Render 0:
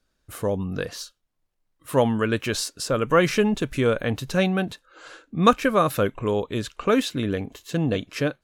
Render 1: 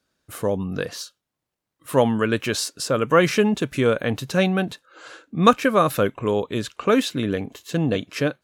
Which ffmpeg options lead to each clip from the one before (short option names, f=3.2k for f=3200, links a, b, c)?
-af "highpass=100,volume=2dB"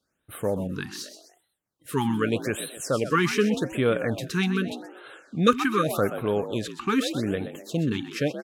-filter_complex "[0:a]bandreject=f=1k:w=14,asplit=2[a][b];[b]asplit=4[c][d][e][f];[c]adelay=127,afreqshift=57,volume=-11dB[g];[d]adelay=254,afreqshift=114,volume=-18.3dB[h];[e]adelay=381,afreqshift=171,volume=-25.7dB[i];[f]adelay=508,afreqshift=228,volume=-33dB[j];[g][h][i][j]amix=inputs=4:normalize=0[k];[a][k]amix=inputs=2:normalize=0,afftfilt=real='re*(1-between(b*sr/1024,530*pow(6000/530,0.5+0.5*sin(2*PI*0.84*pts/sr))/1.41,530*pow(6000/530,0.5+0.5*sin(2*PI*0.84*pts/sr))*1.41))':imag='im*(1-between(b*sr/1024,530*pow(6000/530,0.5+0.5*sin(2*PI*0.84*pts/sr))/1.41,530*pow(6000/530,0.5+0.5*sin(2*PI*0.84*pts/sr))*1.41))':win_size=1024:overlap=0.75,volume=-3.5dB"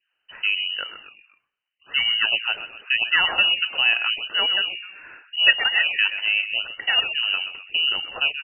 -af "lowpass=f=2.6k:t=q:w=0.5098,lowpass=f=2.6k:t=q:w=0.6013,lowpass=f=2.6k:t=q:w=0.9,lowpass=f=2.6k:t=q:w=2.563,afreqshift=-3100,volume=3dB"